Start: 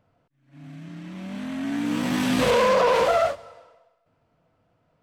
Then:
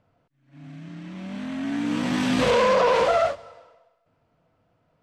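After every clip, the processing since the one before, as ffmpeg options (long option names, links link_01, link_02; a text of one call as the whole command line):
ffmpeg -i in.wav -af "lowpass=7700" out.wav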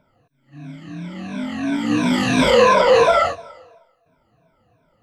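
ffmpeg -i in.wav -af "afftfilt=real='re*pow(10,18/40*sin(2*PI*(1.6*log(max(b,1)*sr/1024/100)/log(2)-(-2.9)*(pts-256)/sr)))':imag='im*pow(10,18/40*sin(2*PI*(1.6*log(max(b,1)*sr/1024/100)/log(2)-(-2.9)*(pts-256)/sr)))':win_size=1024:overlap=0.75,volume=3dB" out.wav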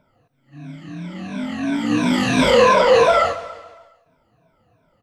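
ffmpeg -i in.wav -af "aecho=1:1:140|280|420|560|700:0.158|0.0808|0.0412|0.021|0.0107" out.wav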